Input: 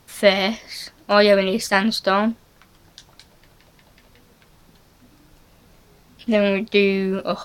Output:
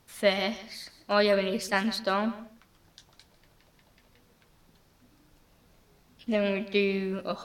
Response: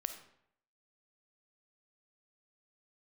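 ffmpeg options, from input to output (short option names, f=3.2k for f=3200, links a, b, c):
-filter_complex "[0:a]asplit=2[a][b];[1:a]atrim=start_sample=2205,atrim=end_sample=6615,adelay=148[c];[b][c]afir=irnorm=-1:irlink=0,volume=-14.5dB[d];[a][d]amix=inputs=2:normalize=0,volume=-9dB"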